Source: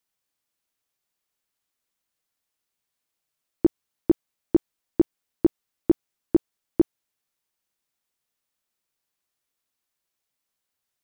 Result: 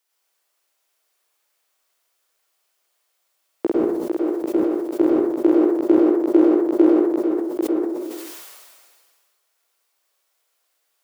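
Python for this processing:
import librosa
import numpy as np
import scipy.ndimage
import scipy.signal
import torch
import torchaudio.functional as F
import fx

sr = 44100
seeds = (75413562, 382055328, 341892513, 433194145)

y = scipy.signal.sosfilt(scipy.signal.butter(4, 390.0, 'highpass', fs=sr, output='sos'), x)
y = fx.over_compress(y, sr, threshold_db=-27.0, ratio=-1.0, at=(3.65, 5.01))
y = fx.echo_multitap(y, sr, ms=(49, 793), db=(-9.0, -5.0))
y = fx.rev_plate(y, sr, seeds[0], rt60_s=0.63, hf_ratio=0.55, predelay_ms=90, drr_db=-3.5)
y = fx.sustainer(y, sr, db_per_s=31.0)
y = y * librosa.db_to_amplitude(6.5)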